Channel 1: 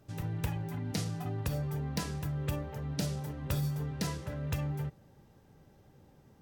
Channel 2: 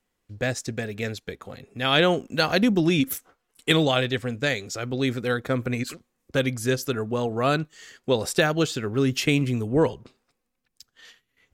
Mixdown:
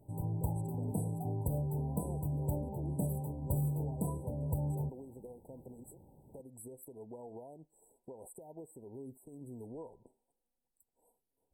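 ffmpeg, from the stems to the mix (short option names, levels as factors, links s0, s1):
-filter_complex "[0:a]volume=0.944[s0];[1:a]equalizer=f=110:w=0.47:g=-10.5,acompressor=threshold=0.0316:ratio=6,alimiter=level_in=2.37:limit=0.0631:level=0:latency=1:release=189,volume=0.422,volume=0.473[s1];[s0][s1]amix=inputs=2:normalize=0,afftfilt=real='re*(1-between(b*sr/4096,1000,7700))':imag='im*(1-between(b*sr/4096,1000,7700))':win_size=4096:overlap=0.75"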